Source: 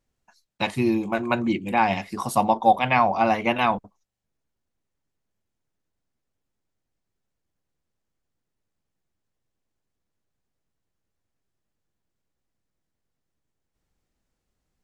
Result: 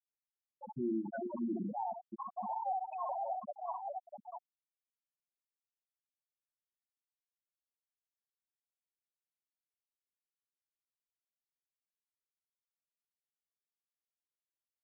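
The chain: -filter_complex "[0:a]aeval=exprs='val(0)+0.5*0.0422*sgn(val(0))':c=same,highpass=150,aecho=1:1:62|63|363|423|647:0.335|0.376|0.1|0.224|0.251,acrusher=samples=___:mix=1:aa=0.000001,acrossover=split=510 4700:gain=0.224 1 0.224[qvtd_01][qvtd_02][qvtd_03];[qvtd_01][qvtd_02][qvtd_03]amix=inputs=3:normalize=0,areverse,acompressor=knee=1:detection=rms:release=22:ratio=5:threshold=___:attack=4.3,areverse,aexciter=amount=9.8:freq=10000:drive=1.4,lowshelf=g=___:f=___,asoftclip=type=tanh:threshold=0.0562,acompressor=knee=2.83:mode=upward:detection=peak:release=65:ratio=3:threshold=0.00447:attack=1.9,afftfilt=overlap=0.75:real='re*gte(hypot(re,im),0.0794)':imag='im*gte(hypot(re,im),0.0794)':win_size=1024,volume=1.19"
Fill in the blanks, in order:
4, 0.0126, 10.5, 280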